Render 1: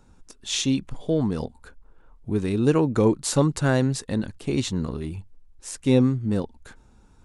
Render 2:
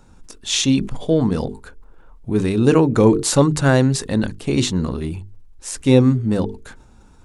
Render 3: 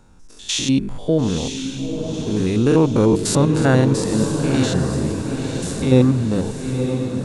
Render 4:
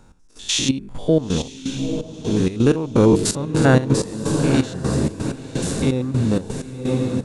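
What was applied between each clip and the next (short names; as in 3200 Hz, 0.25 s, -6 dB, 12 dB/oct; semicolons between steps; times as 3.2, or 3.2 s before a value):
notches 50/100/150/200/250/300/350/400/450 Hz; sustainer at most 120 dB/s; gain +6.5 dB
stepped spectrum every 0.1 s; diffused feedback echo 0.946 s, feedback 52%, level -6 dB
step gate "x..xxx..xx." 127 bpm -12 dB; gain +1.5 dB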